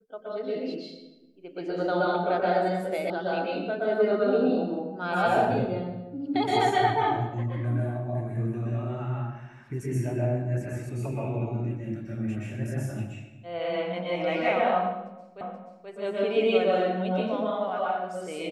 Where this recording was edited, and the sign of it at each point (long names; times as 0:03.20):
0:03.10: cut off before it has died away
0:15.41: the same again, the last 0.48 s